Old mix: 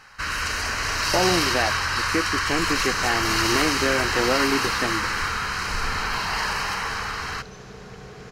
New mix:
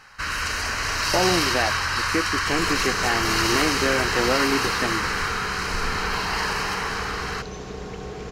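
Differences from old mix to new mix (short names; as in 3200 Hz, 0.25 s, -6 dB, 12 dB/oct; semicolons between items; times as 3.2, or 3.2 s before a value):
second sound +10.0 dB; reverb: off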